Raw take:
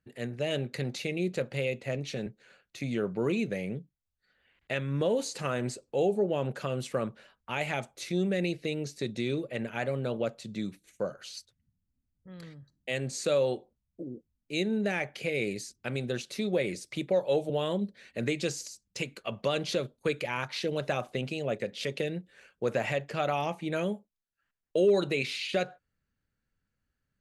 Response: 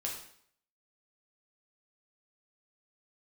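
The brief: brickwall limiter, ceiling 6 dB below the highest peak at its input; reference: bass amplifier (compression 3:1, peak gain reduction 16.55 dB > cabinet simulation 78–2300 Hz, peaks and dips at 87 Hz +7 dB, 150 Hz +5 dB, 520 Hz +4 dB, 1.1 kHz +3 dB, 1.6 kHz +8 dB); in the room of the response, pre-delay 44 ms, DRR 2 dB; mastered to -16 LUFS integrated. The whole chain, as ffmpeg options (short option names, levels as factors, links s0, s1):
-filter_complex "[0:a]alimiter=limit=0.0841:level=0:latency=1,asplit=2[s0][s1];[1:a]atrim=start_sample=2205,adelay=44[s2];[s1][s2]afir=irnorm=-1:irlink=0,volume=0.668[s3];[s0][s3]amix=inputs=2:normalize=0,acompressor=threshold=0.00708:ratio=3,highpass=f=78:w=0.5412,highpass=f=78:w=1.3066,equalizer=f=87:t=q:w=4:g=7,equalizer=f=150:t=q:w=4:g=5,equalizer=f=520:t=q:w=4:g=4,equalizer=f=1100:t=q:w=4:g=3,equalizer=f=1600:t=q:w=4:g=8,lowpass=f=2300:w=0.5412,lowpass=f=2300:w=1.3066,volume=18.8"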